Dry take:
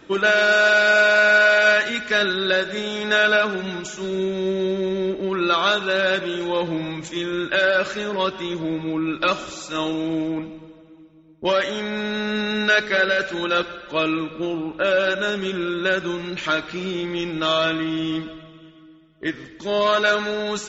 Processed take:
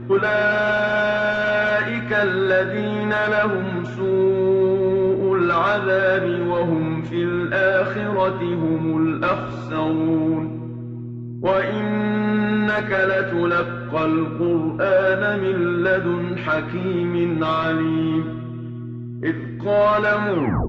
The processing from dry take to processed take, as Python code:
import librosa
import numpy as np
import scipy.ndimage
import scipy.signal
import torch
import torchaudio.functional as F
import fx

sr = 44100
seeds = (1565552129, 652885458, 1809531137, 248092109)

y = fx.tape_stop_end(x, sr, length_s=0.41)
y = fx.dmg_buzz(y, sr, base_hz=120.0, harmonics=3, level_db=-37.0, tilt_db=-1, odd_only=False)
y = fx.cheby_harmonics(y, sr, harmonics=(3, 5), levels_db=(-11, -10), full_scale_db=-5.5)
y = scipy.signal.sosfilt(scipy.signal.butter(2, 1600.0, 'lowpass', fs=sr, output='sos'), y)
y = fx.room_early_taps(y, sr, ms=(18, 76), db=(-6.5, -14.0))